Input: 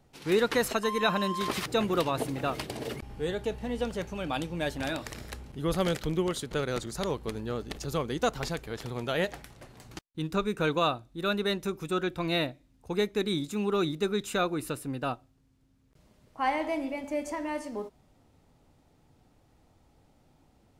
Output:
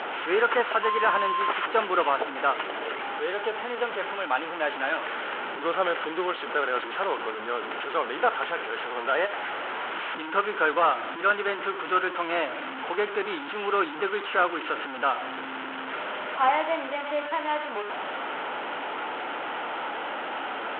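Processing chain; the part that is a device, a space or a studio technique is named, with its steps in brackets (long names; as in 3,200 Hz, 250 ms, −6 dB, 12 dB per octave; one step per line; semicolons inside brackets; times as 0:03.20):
digital answering machine (band-pass filter 370–3,100 Hz; linear delta modulator 16 kbit/s, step −33 dBFS; loudspeaker in its box 350–4,200 Hz, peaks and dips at 910 Hz +5 dB, 1,400 Hz +9 dB, 3,100 Hz +6 dB)
level +4.5 dB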